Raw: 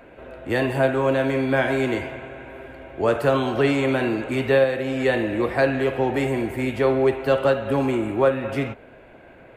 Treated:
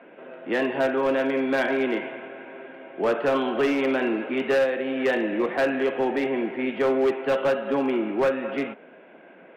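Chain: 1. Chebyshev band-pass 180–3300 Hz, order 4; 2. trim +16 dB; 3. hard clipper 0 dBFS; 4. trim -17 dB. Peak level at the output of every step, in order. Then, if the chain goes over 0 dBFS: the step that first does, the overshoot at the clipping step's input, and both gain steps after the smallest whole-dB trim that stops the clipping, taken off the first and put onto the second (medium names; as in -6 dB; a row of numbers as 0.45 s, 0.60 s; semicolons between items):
-7.5 dBFS, +8.5 dBFS, 0.0 dBFS, -17.0 dBFS; step 2, 8.5 dB; step 2 +7 dB, step 4 -8 dB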